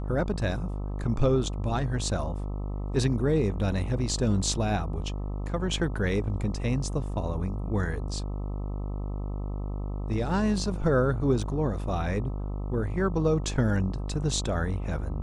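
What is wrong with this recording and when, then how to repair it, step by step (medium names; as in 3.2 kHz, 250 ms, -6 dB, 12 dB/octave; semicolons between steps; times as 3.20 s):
buzz 50 Hz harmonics 26 -32 dBFS
11.43 s: dropout 3.1 ms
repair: de-hum 50 Hz, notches 26; interpolate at 11.43 s, 3.1 ms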